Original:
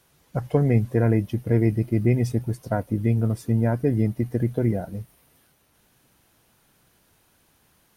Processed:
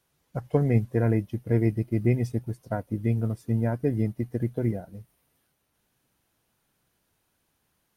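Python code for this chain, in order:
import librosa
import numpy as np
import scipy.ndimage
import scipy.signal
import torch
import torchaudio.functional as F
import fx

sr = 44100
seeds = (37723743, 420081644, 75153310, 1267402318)

y = fx.upward_expand(x, sr, threshold_db=-34.0, expansion=1.5)
y = F.gain(torch.from_numpy(y), -1.5).numpy()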